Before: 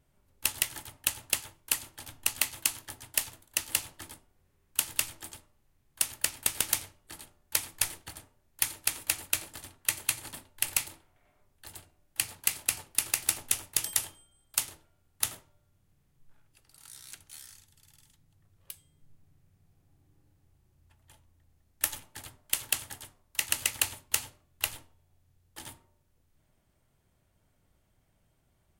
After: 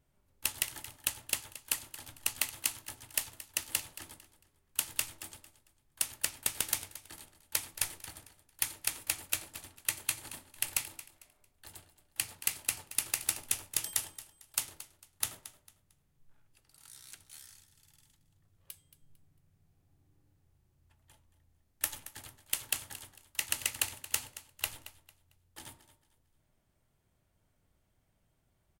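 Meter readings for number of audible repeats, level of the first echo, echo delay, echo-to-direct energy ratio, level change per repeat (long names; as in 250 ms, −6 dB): 2, −15.5 dB, 225 ms, −15.0 dB, −11.0 dB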